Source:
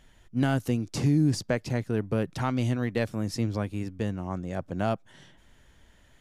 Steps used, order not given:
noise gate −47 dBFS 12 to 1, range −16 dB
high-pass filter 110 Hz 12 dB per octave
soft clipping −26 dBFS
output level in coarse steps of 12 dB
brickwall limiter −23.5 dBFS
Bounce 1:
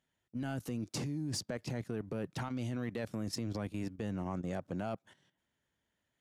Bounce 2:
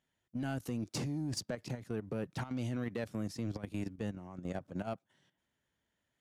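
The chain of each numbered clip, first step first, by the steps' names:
noise gate, then high-pass filter, then brickwall limiter, then output level in coarse steps, then soft clipping
brickwall limiter, then high-pass filter, then soft clipping, then noise gate, then output level in coarse steps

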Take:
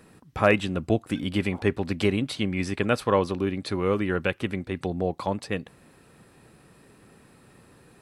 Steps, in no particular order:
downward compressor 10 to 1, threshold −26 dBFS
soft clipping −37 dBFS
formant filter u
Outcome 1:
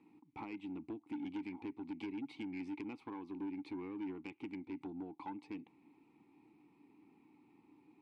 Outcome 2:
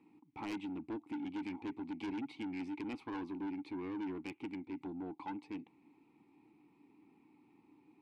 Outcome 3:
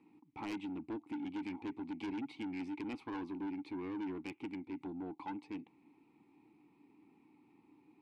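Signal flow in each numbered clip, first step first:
downward compressor, then formant filter, then soft clipping
formant filter, then soft clipping, then downward compressor
formant filter, then downward compressor, then soft clipping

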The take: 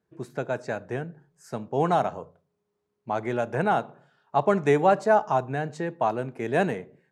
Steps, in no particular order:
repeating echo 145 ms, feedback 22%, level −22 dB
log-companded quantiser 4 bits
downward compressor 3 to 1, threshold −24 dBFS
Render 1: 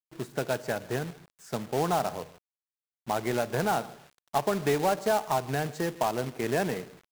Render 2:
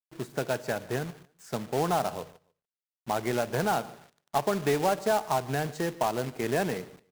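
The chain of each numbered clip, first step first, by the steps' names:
downward compressor, then repeating echo, then log-companded quantiser
downward compressor, then log-companded quantiser, then repeating echo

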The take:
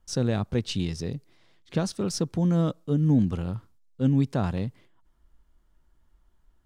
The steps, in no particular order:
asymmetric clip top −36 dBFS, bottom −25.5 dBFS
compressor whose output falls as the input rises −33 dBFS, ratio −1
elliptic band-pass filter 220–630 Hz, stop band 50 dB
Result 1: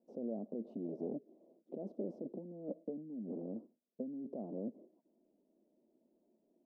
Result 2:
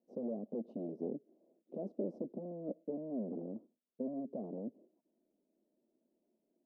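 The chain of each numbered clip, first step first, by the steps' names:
compressor whose output falls as the input rises, then asymmetric clip, then elliptic band-pass filter
asymmetric clip, then compressor whose output falls as the input rises, then elliptic band-pass filter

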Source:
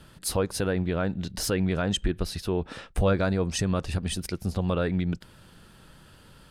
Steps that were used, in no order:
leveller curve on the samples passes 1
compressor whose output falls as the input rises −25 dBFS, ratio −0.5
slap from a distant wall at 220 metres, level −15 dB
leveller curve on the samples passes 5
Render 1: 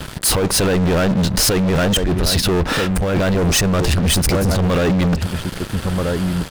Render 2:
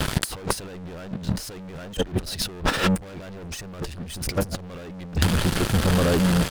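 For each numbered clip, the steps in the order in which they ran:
slap from a distant wall, then first leveller curve on the samples, then compressor whose output falls as the input rises, then second leveller curve on the samples
second leveller curve on the samples, then slap from a distant wall, then first leveller curve on the samples, then compressor whose output falls as the input rises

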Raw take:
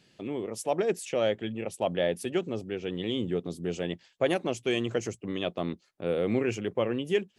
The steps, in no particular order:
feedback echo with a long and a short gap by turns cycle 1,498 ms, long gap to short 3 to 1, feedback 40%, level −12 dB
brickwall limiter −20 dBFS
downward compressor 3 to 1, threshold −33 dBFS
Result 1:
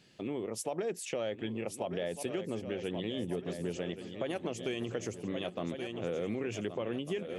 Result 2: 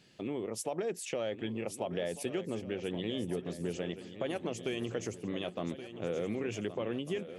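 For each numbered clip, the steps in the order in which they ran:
feedback echo with a long and a short gap by turns, then brickwall limiter, then downward compressor
brickwall limiter, then downward compressor, then feedback echo with a long and a short gap by turns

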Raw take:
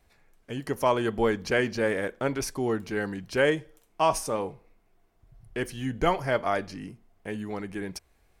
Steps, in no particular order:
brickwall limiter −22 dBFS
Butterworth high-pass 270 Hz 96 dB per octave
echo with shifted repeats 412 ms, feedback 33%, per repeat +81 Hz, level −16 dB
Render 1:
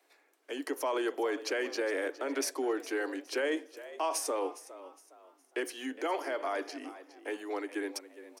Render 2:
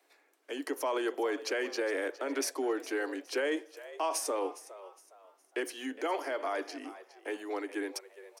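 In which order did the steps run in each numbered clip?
brickwall limiter, then echo with shifted repeats, then Butterworth high-pass
brickwall limiter, then Butterworth high-pass, then echo with shifted repeats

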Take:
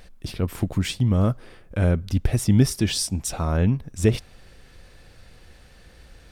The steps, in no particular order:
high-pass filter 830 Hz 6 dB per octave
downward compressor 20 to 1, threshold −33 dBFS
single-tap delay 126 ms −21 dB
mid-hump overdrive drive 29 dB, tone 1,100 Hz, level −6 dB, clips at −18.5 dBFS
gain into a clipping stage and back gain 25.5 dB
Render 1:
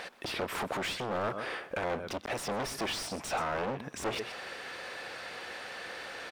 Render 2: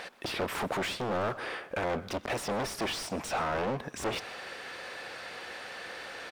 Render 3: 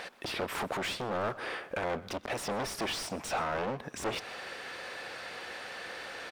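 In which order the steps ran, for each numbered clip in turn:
single-tap delay, then gain into a clipping stage and back, then downward compressor, then high-pass filter, then mid-hump overdrive
gain into a clipping stage and back, then high-pass filter, then downward compressor, then mid-hump overdrive, then single-tap delay
gain into a clipping stage and back, then downward compressor, then high-pass filter, then mid-hump overdrive, then single-tap delay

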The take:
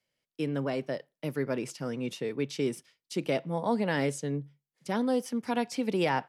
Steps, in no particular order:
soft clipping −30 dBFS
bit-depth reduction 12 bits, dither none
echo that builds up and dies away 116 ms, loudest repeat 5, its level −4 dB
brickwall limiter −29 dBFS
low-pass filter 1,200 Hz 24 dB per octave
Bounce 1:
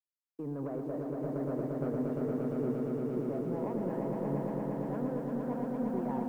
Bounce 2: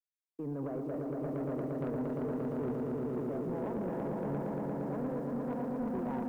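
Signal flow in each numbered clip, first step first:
brickwall limiter, then low-pass filter, then soft clipping, then bit-depth reduction, then echo that builds up and dies away
brickwall limiter, then low-pass filter, then bit-depth reduction, then echo that builds up and dies away, then soft clipping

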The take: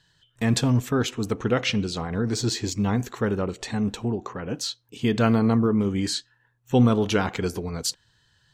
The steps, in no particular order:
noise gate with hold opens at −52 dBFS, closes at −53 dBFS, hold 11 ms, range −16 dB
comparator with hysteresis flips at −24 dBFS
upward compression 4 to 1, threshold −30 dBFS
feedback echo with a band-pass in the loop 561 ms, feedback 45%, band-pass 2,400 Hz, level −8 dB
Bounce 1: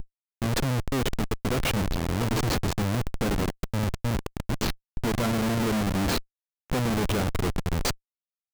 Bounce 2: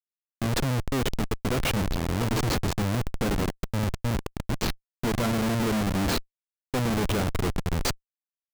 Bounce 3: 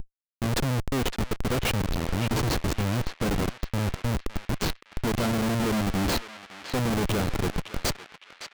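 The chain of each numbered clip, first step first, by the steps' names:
upward compression, then feedback echo with a band-pass in the loop, then comparator with hysteresis, then noise gate with hold
feedback echo with a band-pass in the loop, then comparator with hysteresis, then upward compression, then noise gate with hold
upward compression, then comparator with hysteresis, then feedback echo with a band-pass in the loop, then noise gate with hold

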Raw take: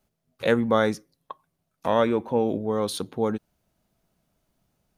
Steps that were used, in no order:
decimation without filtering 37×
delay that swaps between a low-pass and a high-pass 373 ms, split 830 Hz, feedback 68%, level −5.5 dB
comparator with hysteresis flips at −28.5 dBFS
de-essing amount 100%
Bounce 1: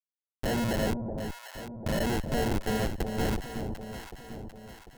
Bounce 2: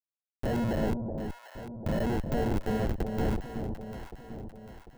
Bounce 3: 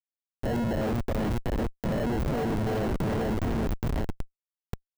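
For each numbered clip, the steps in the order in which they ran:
de-essing, then decimation without filtering, then comparator with hysteresis, then delay that swaps between a low-pass and a high-pass
decimation without filtering, then comparator with hysteresis, then de-essing, then delay that swaps between a low-pass and a high-pass
decimation without filtering, then delay that swaps between a low-pass and a high-pass, then comparator with hysteresis, then de-essing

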